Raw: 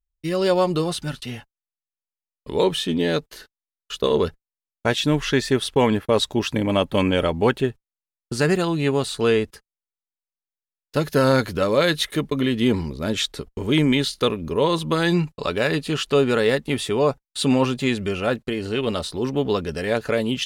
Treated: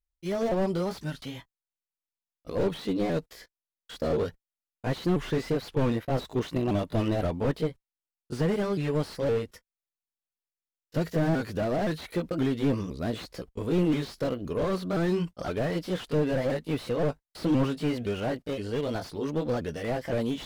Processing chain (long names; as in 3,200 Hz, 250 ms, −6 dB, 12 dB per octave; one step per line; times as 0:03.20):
pitch shifter swept by a sawtooth +3.5 semitones, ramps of 516 ms
slew-rate limiting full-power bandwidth 53 Hz
level −4.5 dB